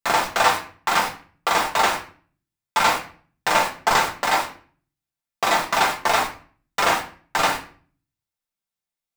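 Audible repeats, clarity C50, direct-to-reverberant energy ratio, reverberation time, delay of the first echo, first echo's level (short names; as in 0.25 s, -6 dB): none, 10.0 dB, -2.5 dB, 0.45 s, none, none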